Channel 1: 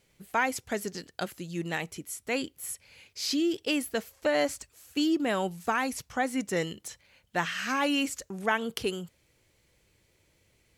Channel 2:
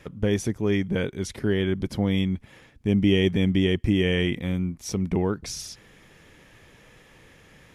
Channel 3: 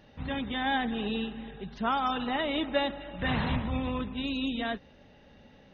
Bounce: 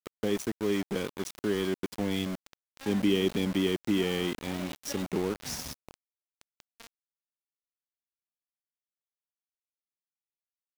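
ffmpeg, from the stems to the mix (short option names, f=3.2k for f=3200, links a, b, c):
-filter_complex "[1:a]highpass=250,volume=-1.5dB[a];[2:a]highshelf=f=3.5k:g=-2,adelay=2150,volume=-11.5dB[b];[a][b]amix=inputs=2:normalize=0,acrossover=split=480|3000[c][d][e];[d]acompressor=threshold=-39dB:ratio=10[f];[c][f][e]amix=inputs=3:normalize=0,aeval=exprs='val(0)*gte(abs(val(0)),0.0211)':c=same"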